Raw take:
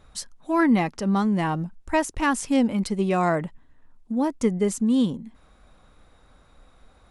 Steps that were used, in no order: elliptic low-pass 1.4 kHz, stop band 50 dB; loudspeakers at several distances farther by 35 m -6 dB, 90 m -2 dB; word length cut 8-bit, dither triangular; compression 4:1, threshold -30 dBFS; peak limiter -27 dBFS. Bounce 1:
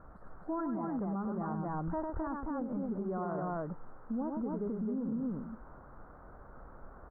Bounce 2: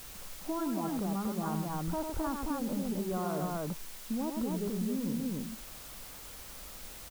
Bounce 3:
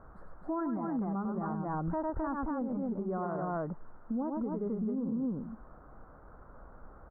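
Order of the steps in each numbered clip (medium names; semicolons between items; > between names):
compression > word length cut > loudspeakers at several distances > peak limiter > elliptic low-pass; elliptic low-pass > peak limiter > loudspeakers at several distances > compression > word length cut; loudspeakers at several distances > word length cut > elliptic low-pass > compression > peak limiter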